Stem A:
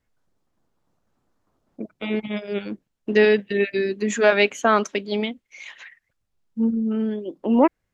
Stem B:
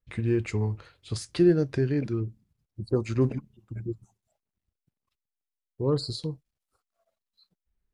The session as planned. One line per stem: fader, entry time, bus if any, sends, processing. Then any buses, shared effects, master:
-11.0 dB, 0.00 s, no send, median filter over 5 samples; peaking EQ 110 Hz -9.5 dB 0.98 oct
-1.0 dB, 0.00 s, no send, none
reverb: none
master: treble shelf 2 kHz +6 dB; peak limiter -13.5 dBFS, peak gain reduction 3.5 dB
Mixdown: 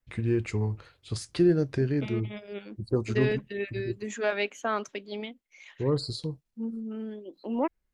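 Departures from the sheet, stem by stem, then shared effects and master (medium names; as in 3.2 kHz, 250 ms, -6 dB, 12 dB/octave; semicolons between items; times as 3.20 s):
stem A: missing median filter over 5 samples; master: missing treble shelf 2 kHz +6 dB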